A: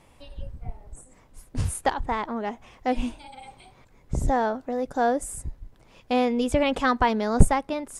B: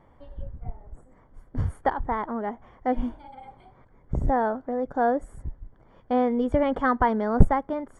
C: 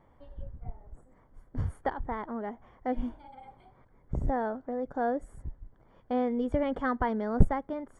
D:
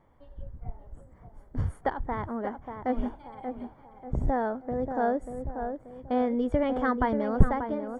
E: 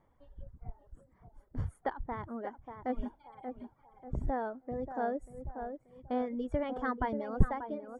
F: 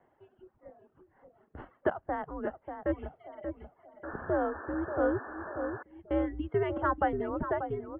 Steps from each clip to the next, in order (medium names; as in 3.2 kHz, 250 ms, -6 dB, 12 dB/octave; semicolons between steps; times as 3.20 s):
Savitzky-Golay filter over 41 samples
dynamic bell 1 kHz, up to -4 dB, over -34 dBFS, Q 1.2; trim -5 dB
level rider gain up to 4 dB; tape echo 586 ms, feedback 46%, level -6 dB, low-pass 1.4 kHz; trim -1.5 dB
reverb removal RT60 0.95 s; trim -6 dB
mistuned SSB -180 Hz 240–3000 Hz; painted sound noise, 4.03–5.83 s, 230–1800 Hz -50 dBFS; bass shelf 140 Hz -10 dB; trim +7 dB